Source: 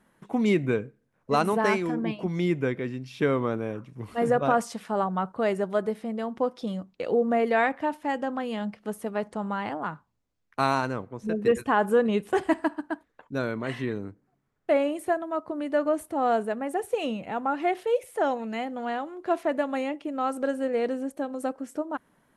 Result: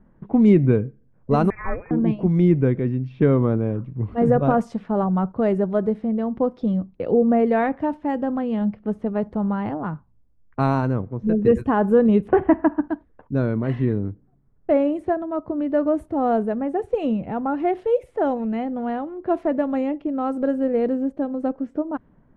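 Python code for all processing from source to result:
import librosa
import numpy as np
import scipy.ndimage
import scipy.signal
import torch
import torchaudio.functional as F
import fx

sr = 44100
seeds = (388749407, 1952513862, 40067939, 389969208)

y = fx.chain(x, sr, fx.highpass(hz=1300.0, slope=12),
    fx.freq_invert(carrier_hz=2800), at=(1.5, 1.91))
y = fx.chain(y, sr, fx.lowpass(hz=2500.0, slope=24),
    fx.peak_eq(hz=1200.0, db=4.0, octaves=2.8),
    fx.band_squash(depth_pct=70), at=(12.28, 12.88))
y = fx.env_lowpass(y, sr, base_hz=2000.0, full_db=-21.5)
y = fx.tilt_eq(y, sr, slope=-4.5)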